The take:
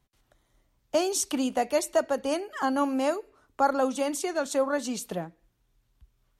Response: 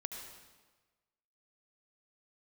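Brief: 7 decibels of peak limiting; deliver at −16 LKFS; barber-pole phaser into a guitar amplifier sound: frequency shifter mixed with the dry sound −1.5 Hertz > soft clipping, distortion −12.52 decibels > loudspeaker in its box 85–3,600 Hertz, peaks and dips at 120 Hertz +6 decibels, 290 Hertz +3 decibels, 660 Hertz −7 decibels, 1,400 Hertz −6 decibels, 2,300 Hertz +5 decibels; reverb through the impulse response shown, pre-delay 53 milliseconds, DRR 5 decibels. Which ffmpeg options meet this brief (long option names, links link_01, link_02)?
-filter_complex "[0:a]alimiter=limit=-19.5dB:level=0:latency=1,asplit=2[link_01][link_02];[1:a]atrim=start_sample=2205,adelay=53[link_03];[link_02][link_03]afir=irnorm=-1:irlink=0,volume=-4dB[link_04];[link_01][link_04]amix=inputs=2:normalize=0,asplit=2[link_05][link_06];[link_06]afreqshift=-1.5[link_07];[link_05][link_07]amix=inputs=2:normalize=1,asoftclip=threshold=-28dB,highpass=85,equalizer=frequency=120:width_type=q:width=4:gain=6,equalizer=frequency=290:width_type=q:width=4:gain=3,equalizer=frequency=660:width_type=q:width=4:gain=-7,equalizer=frequency=1400:width_type=q:width=4:gain=-6,equalizer=frequency=2300:width_type=q:width=4:gain=5,lowpass=frequency=3600:width=0.5412,lowpass=frequency=3600:width=1.3066,volume=19.5dB"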